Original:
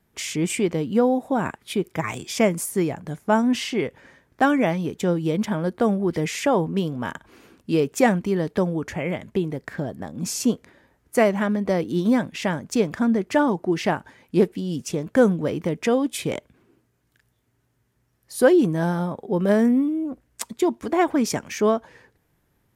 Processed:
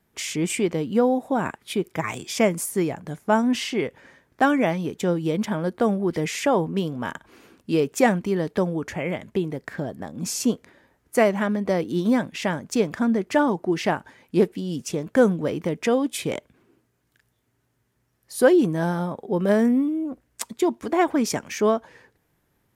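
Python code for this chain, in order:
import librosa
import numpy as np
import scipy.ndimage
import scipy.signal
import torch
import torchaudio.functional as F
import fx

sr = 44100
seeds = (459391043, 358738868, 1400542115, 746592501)

y = fx.low_shelf(x, sr, hz=140.0, db=-4.5)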